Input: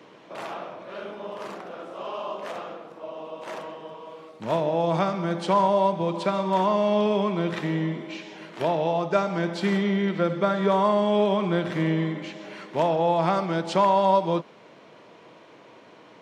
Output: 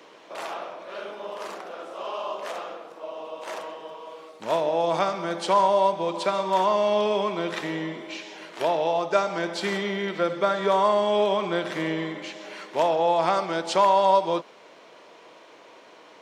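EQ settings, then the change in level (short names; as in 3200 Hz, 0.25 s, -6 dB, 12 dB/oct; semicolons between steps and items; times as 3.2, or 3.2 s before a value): tone controls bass -15 dB, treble +5 dB; +1.5 dB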